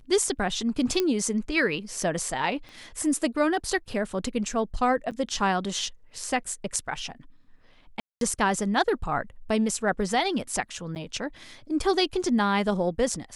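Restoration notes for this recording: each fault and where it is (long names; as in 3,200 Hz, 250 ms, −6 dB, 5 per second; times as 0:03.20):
0:01.00: click −11 dBFS
0:02.69: click −32 dBFS
0:05.11–0:05.12: drop-out 7.9 ms
0:08.00–0:08.21: drop-out 212 ms
0:10.95–0:10.96: drop-out 9.3 ms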